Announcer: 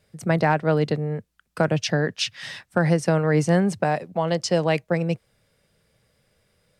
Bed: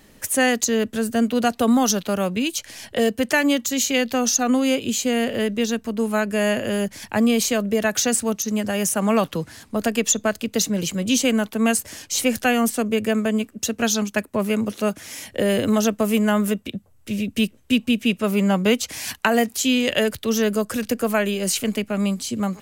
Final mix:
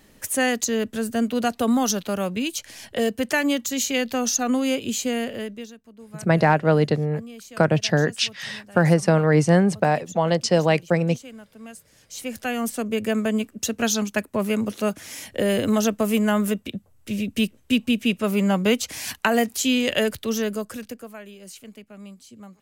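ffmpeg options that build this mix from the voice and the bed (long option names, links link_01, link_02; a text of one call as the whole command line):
ffmpeg -i stem1.wav -i stem2.wav -filter_complex "[0:a]adelay=6000,volume=2.5dB[link_01];[1:a]volume=17.5dB,afade=type=out:start_time=5.06:duration=0.68:silence=0.112202,afade=type=in:start_time=11.93:duration=1.31:silence=0.0944061,afade=type=out:start_time=20.07:duration=1.03:silence=0.125893[link_02];[link_01][link_02]amix=inputs=2:normalize=0" out.wav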